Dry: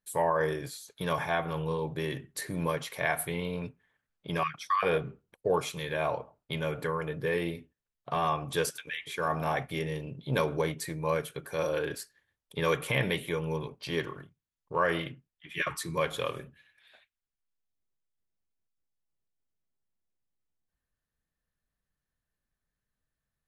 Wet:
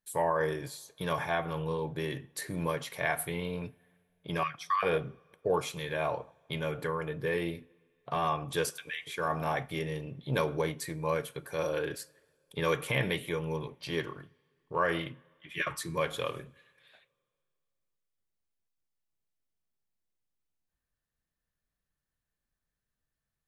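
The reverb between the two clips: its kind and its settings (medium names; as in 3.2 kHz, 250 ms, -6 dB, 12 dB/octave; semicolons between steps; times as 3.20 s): two-slope reverb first 0.35 s, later 2.4 s, from -18 dB, DRR 19 dB; trim -1.5 dB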